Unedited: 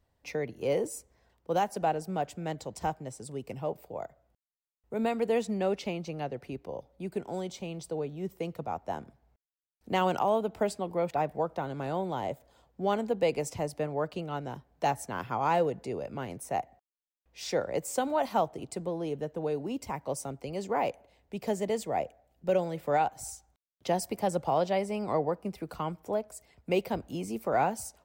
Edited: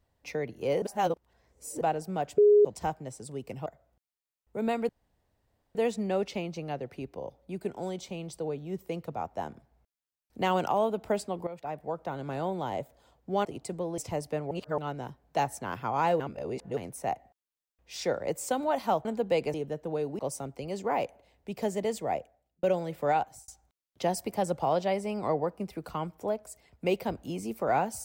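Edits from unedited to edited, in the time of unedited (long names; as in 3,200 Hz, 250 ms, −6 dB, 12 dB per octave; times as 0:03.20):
0:00.82–0:01.81: reverse
0:02.38–0:02.65: beep over 415 Hz −15.5 dBFS
0:03.66–0:04.03: remove
0:05.26: splice in room tone 0.86 s
0:10.98–0:11.78: fade in, from −14 dB
0:12.96–0:13.45: swap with 0:18.52–0:19.05
0:13.98–0:14.25: reverse
0:15.67–0:16.24: reverse
0:19.70–0:20.04: remove
0:21.96–0:22.48: fade out
0:23.07–0:23.33: fade out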